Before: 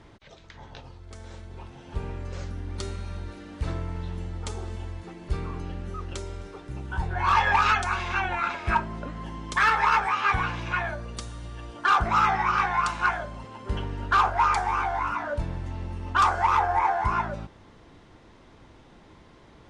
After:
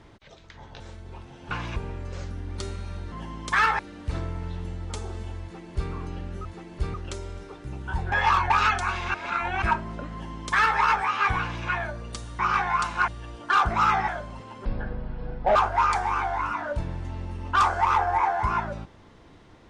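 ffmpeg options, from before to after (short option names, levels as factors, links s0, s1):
-filter_complex "[0:a]asplit=17[s0][s1][s2][s3][s4][s5][s6][s7][s8][s9][s10][s11][s12][s13][s14][s15][s16];[s0]atrim=end=0.802[s17];[s1]atrim=start=1.248:end=1.962[s18];[s2]atrim=start=10.448:end=10.702[s19];[s3]atrim=start=1.958:end=3.322[s20];[s4]atrim=start=9.158:end=9.832[s21];[s5]atrim=start=3.318:end=5.982[s22];[s6]atrim=start=4.948:end=5.442[s23];[s7]atrim=start=5.978:end=7.162[s24];[s8]atrim=start=7.158:end=7.542,asetpts=PTS-STARTPTS,areverse[s25];[s9]atrim=start=7.538:end=8.182[s26];[s10]atrim=start=8.178:end=8.662,asetpts=PTS-STARTPTS,areverse[s27];[s11]atrim=start=8.658:end=11.432[s28];[s12]atrim=start=12.428:end=13.122[s29];[s13]atrim=start=11.428:end=12.432[s30];[s14]atrim=start=13.118:end=13.694[s31];[s15]atrim=start=13.69:end=14.17,asetpts=PTS-STARTPTS,asetrate=23373,aresample=44100[s32];[s16]atrim=start=14.166[s33];[s17][s18]acrossfade=d=0.004:c1=hsin:c2=hsin[s34];[s34][s19]acrossfade=d=0.004:c1=hsin:c2=hsin[s35];[s35][s20]acrossfade=d=0.004:c1=hsin:c2=hsin[s36];[s36][s21]acrossfade=d=0.004:c1=hsin:c2=hsin[s37];[s37][s22]acrossfade=d=0.004:c1=hsin:c2=hsin[s38];[s38][s23]acrossfade=d=0.004:c1=hsin:c2=hsin[s39];[s39][s24]acrossfade=d=0.004:c1=hsin:c2=hsin[s40];[s40][s25]acrossfade=d=0.004:c1=hsin:c2=hsin[s41];[s41][s26]acrossfade=d=0.004:c1=hsin:c2=hsin[s42];[s42][s27]acrossfade=d=0.004:c1=hsin:c2=hsin[s43];[s43][s28]acrossfade=d=0.004:c1=hsin:c2=hsin[s44];[s44][s29]acrossfade=d=0.004:c1=hsin:c2=hsin[s45];[s45][s30]acrossfade=d=0.004:c1=hsin:c2=hsin[s46];[s46][s31]acrossfade=d=0.004:c1=hsin:c2=hsin[s47];[s47][s32]acrossfade=d=0.004:c1=hsin:c2=hsin[s48];[s48][s33]acrossfade=d=0.004:c1=hsin:c2=hsin"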